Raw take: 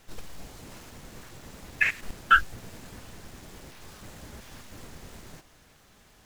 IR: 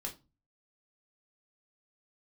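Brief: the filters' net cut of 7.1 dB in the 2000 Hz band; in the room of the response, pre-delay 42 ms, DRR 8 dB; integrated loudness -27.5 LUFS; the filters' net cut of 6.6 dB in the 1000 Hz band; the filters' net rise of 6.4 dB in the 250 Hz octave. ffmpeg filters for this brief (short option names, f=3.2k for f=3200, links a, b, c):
-filter_complex "[0:a]equalizer=f=250:t=o:g=8.5,equalizer=f=1k:t=o:g=-6,equalizer=f=2k:t=o:g=-7.5,asplit=2[a][b];[1:a]atrim=start_sample=2205,adelay=42[c];[b][c]afir=irnorm=-1:irlink=0,volume=-7dB[d];[a][d]amix=inputs=2:normalize=0,volume=9.5dB"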